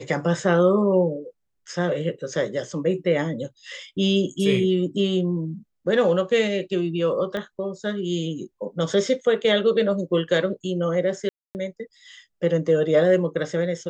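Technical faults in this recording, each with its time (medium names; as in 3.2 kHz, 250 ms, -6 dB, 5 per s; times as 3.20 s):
7.37 s: pop -18 dBFS
11.29–11.55 s: dropout 259 ms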